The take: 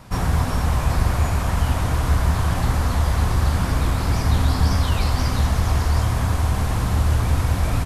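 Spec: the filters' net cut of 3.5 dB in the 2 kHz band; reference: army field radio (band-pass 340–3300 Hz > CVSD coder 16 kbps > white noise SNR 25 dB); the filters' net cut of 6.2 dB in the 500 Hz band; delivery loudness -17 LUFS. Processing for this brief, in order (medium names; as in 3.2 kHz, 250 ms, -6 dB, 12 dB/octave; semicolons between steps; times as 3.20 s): band-pass 340–3300 Hz; peaking EQ 500 Hz -7 dB; peaking EQ 2 kHz -3.5 dB; CVSD coder 16 kbps; white noise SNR 25 dB; trim +16 dB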